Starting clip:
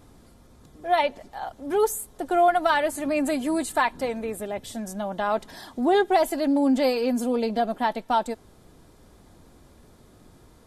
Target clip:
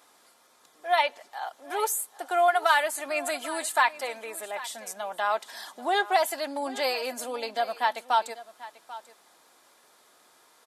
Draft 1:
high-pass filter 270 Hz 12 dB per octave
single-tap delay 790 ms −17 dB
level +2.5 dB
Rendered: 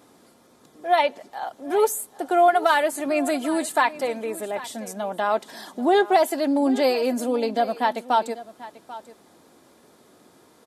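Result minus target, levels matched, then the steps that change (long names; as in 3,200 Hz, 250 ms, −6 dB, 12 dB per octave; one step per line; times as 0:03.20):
250 Hz band +12.0 dB
change: high-pass filter 880 Hz 12 dB per octave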